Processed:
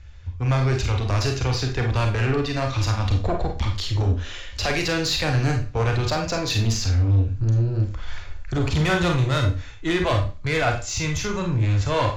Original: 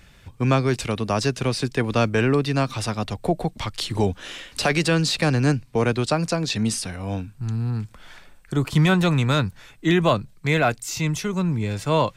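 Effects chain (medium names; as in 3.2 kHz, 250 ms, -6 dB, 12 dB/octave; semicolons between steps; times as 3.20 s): Chebyshev low-pass 7.3 kHz, order 8; resonant low shelf 120 Hz +12.5 dB, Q 3; level rider gain up to 14 dB; saturation -12 dBFS, distortion -11 dB; on a send: reverberation RT60 0.35 s, pre-delay 31 ms, DRR 2.5 dB; on the sum: trim -5.5 dB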